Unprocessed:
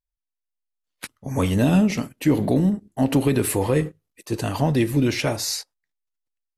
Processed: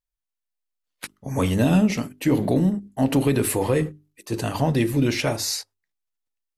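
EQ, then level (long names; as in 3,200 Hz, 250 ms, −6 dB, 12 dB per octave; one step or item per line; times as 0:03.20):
mains-hum notches 50/100/150/200/250/300/350/400 Hz
0.0 dB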